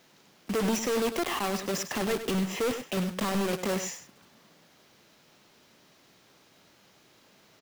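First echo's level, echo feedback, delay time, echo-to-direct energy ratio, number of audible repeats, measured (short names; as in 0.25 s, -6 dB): -10.5 dB, no steady repeat, 0.1 s, -10.5 dB, 1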